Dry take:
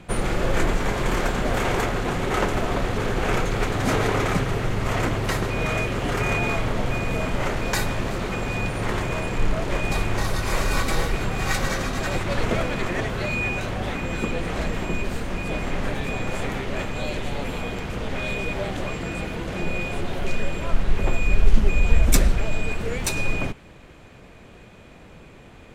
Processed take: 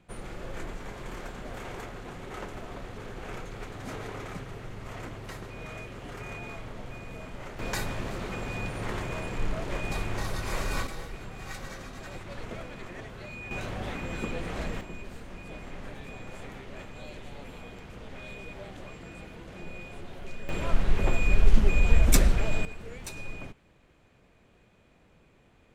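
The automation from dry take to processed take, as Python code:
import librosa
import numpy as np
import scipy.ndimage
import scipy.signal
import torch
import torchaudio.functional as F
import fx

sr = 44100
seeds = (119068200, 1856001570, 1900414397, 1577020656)

y = fx.gain(x, sr, db=fx.steps((0.0, -16.5), (7.59, -8.0), (10.87, -16.0), (13.51, -7.5), (14.81, -15.0), (20.49, -3.0), (22.65, -15.0)))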